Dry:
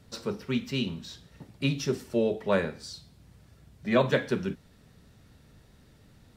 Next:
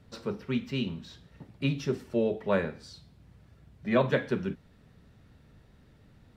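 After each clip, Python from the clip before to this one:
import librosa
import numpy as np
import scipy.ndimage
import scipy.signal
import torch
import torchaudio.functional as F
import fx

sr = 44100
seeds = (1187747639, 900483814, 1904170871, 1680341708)

y = fx.bass_treble(x, sr, bass_db=1, treble_db=-9)
y = y * librosa.db_to_amplitude(-1.5)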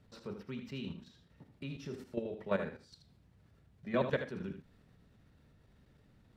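y = fx.level_steps(x, sr, step_db=12)
y = y + 10.0 ** (-9.0 / 20.0) * np.pad(y, (int(79 * sr / 1000.0), 0))[:len(y)]
y = y * librosa.db_to_amplitude(-4.5)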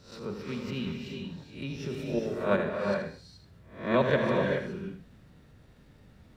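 y = fx.spec_swells(x, sr, rise_s=0.45)
y = fx.rev_gated(y, sr, seeds[0], gate_ms=450, shape='rising', drr_db=2.0)
y = y * librosa.db_to_amplitude(5.5)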